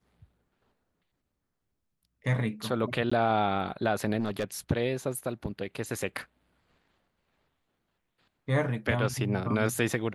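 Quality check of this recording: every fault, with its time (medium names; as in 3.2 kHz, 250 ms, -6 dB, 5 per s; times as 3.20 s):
3.10–3.12 s: dropout 15 ms
4.20–4.45 s: clipped -24.5 dBFS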